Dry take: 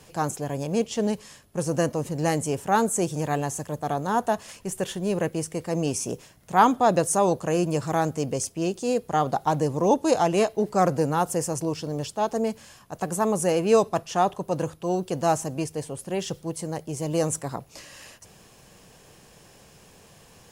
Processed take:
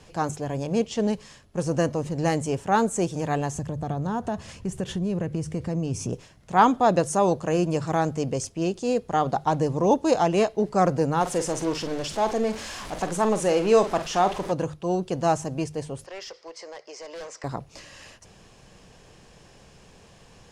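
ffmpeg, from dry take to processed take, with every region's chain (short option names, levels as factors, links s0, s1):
-filter_complex "[0:a]asettb=1/sr,asplit=3[s0][s1][s2];[s0]atrim=end=3.544[s3];[s1]atrim=start=3.54:end=6.13,asetpts=PTS-STARTPTS,afade=t=in:d=0.004:c=qsin,afade=t=out:st=2.586:d=0.004:c=qsin,equalizer=f=98:w=0.5:g=13,acompressor=threshold=0.0501:ratio=3:attack=3.2:release=140:knee=1:detection=peak[s4];[s2]atrim=start=6.126[s5];[s3][s4]acrossfade=d=0.004:c1=hsin:c2=qsin[s6];[s6][s5]acrossfade=d=0.004:c1=qsin:c2=hsin,asettb=1/sr,asplit=3[s7][s8][s9];[s7]atrim=end=11.214[s10];[s8]atrim=start=11.21:end=14.52,asetpts=PTS-STARTPTS,afade=t=in:d=0.004:c=qsin,afade=t=out:st=3.306:d=0.004:c=qsin,aeval=exprs='val(0)+0.5*0.0299*sgn(val(0))':c=same,equalizer=f=110:t=o:w=1.2:g=-12,asplit=2[s11][s12];[s12]adelay=46,volume=0.299[s13];[s11][s13]amix=inputs=2:normalize=0,atrim=end_sample=145971[s14];[s9]atrim=start=14.516[s15];[s10][s14]acrossfade=d=0.004:c1=hsin:c2=qsin[s16];[s16][s15]acrossfade=d=0.004:c1=qsin:c2=hsin,asettb=1/sr,asplit=3[s17][s18][s19];[s17]atrim=end=16.064[s20];[s18]atrim=start=16.06:end=17.44,asetpts=PTS-STARTPTS,afade=t=in:d=0.004:c=qsin,afade=t=out:st=1.376:d=0.004:c=qsin,highpass=f=490:w=0.5412,highpass=f=490:w=1.3066,equalizer=f=780:t=q:w=4:g=-4,equalizer=f=1100:t=q:w=4:g=3,equalizer=f=2000:t=q:w=4:g=8,equalizer=f=3500:t=q:w=4:g=-4,equalizer=f=5000:t=q:w=4:g=10,lowpass=f=6300:w=0.5412,lowpass=f=6300:w=1.3066,asoftclip=type=hard:threshold=0.0266,acompressor=threshold=0.0158:ratio=6:attack=3.2:release=140:knee=1:detection=peak[s21];[s19]atrim=start=17.436[s22];[s20][s21]acrossfade=d=0.004:c1=hsin:c2=qsin[s23];[s23][s22]acrossfade=d=0.004:c1=qsin:c2=hsin,lowpass=6700,lowshelf=f=79:g=8.5,bandreject=f=50:t=h:w=6,bandreject=f=100:t=h:w=6,bandreject=f=150:t=h:w=6"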